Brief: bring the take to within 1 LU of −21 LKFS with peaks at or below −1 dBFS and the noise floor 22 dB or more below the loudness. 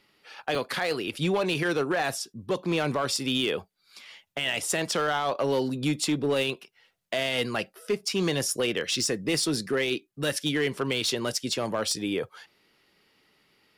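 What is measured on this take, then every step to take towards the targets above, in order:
share of clipped samples 1.2%; peaks flattened at −19.5 dBFS; number of dropouts 1; longest dropout 2.1 ms; integrated loudness −27.5 LKFS; sample peak −19.5 dBFS; target loudness −21.0 LKFS
→ clipped peaks rebuilt −19.5 dBFS
repair the gap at 0:00.55, 2.1 ms
level +6.5 dB

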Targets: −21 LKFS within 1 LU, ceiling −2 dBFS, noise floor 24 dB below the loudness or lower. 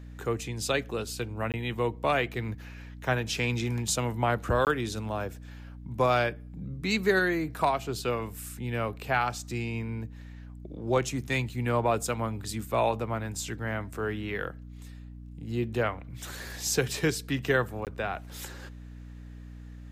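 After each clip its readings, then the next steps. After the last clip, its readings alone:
number of dropouts 3; longest dropout 18 ms; mains hum 60 Hz; hum harmonics up to 300 Hz; level of the hum −41 dBFS; integrated loudness −30.0 LKFS; sample peak −13.0 dBFS; target loudness −21.0 LKFS
→ repair the gap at 0:01.52/0:04.65/0:17.85, 18 ms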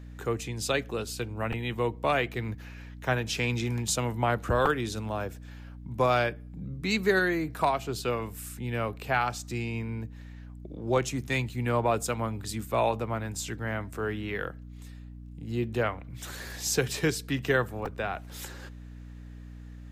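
number of dropouts 0; mains hum 60 Hz; hum harmonics up to 300 Hz; level of the hum −41 dBFS
→ mains-hum notches 60/120/180/240/300 Hz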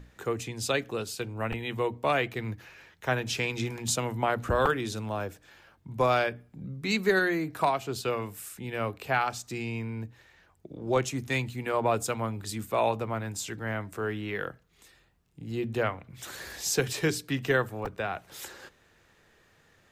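mains hum none found; integrated loudness −30.0 LKFS; sample peak −11.5 dBFS; target loudness −21.0 LKFS
→ level +9 dB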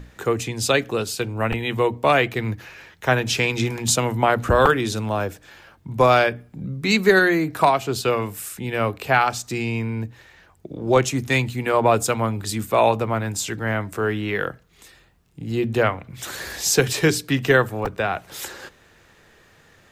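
integrated loudness −21.0 LKFS; sample peak −2.5 dBFS; background noise floor −55 dBFS

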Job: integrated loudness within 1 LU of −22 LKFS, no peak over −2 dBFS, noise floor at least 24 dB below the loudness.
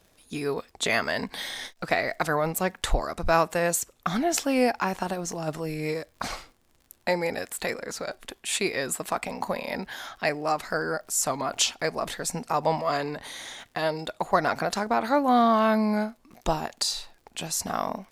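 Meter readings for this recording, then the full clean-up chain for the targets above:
crackle rate 53 per second; integrated loudness −27.5 LKFS; sample peak −5.0 dBFS; target loudness −22.0 LKFS
→ click removal
level +5.5 dB
brickwall limiter −2 dBFS

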